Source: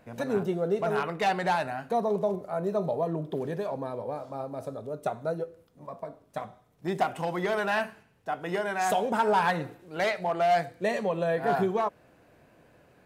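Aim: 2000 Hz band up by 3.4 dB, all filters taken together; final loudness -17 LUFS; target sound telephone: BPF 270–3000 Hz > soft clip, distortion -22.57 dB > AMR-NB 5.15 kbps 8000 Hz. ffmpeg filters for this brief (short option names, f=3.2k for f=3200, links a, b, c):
-af "highpass=270,lowpass=3k,equalizer=f=2k:t=o:g=5,asoftclip=threshold=-15.5dB,volume=14dB" -ar 8000 -c:a libopencore_amrnb -b:a 5150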